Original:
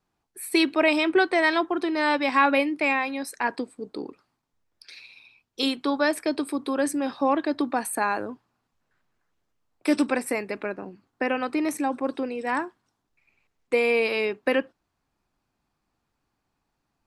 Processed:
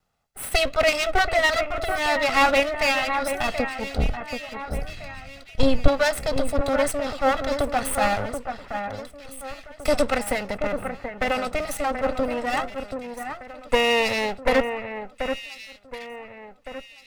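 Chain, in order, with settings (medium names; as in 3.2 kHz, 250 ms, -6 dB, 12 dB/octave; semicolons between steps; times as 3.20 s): comb filter that takes the minimum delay 1.5 ms; 3.98–5.88 s: RIAA curve playback; echo whose repeats swap between lows and highs 731 ms, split 2.2 kHz, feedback 58%, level -7 dB; trim +5 dB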